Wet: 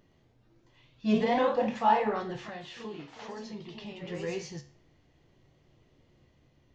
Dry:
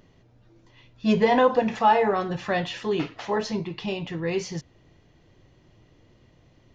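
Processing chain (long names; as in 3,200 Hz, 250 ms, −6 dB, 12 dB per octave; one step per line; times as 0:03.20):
0:02.39–0:04.08: downward compressor 4 to 1, threshold −33 dBFS, peak gain reduction 10.5 dB
tuned comb filter 71 Hz, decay 0.42 s, harmonics all, mix 70%
delay with pitch and tempo change per echo 117 ms, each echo +1 semitone, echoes 2, each echo −6 dB
level −1.5 dB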